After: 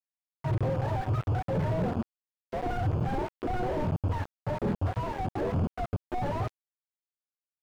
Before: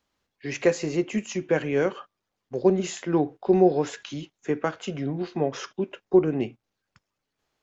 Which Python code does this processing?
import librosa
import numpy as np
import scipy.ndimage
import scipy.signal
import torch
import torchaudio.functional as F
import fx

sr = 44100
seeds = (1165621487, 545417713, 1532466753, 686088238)

y = fx.octave_mirror(x, sr, pivot_hz=520.0)
y = fx.lowpass(y, sr, hz=1300.0, slope=24, at=(4.86, 5.39))
y = fx.quant_companded(y, sr, bits=2)
y = fx.slew_limit(y, sr, full_power_hz=18.0)
y = F.gain(torch.from_numpy(y), 1.0).numpy()